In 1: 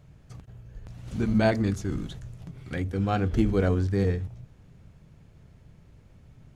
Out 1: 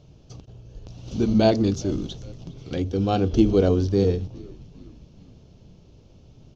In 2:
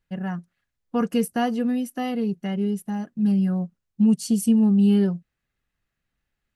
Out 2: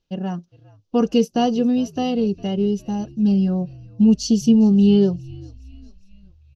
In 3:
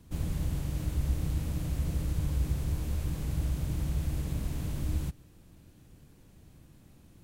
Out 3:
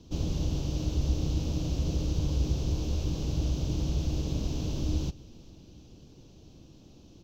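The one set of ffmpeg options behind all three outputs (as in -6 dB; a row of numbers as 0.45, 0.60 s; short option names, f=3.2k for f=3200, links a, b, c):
-filter_complex "[0:a]firequalizer=gain_entry='entry(160,0);entry(330,7);entry(1900,-11);entry(2800,5);entry(6000,9);entry(9000,-21);entry(13000,-12)':delay=0.05:min_phase=1,asplit=5[a][b][c][d][e];[b]adelay=407,afreqshift=-69,volume=-23dB[f];[c]adelay=814,afreqshift=-138,volume=-27.9dB[g];[d]adelay=1221,afreqshift=-207,volume=-32.8dB[h];[e]adelay=1628,afreqshift=-276,volume=-37.6dB[i];[a][f][g][h][i]amix=inputs=5:normalize=0,volume=1.5dB"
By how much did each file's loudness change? +4.5, +4.0, +2.0 LU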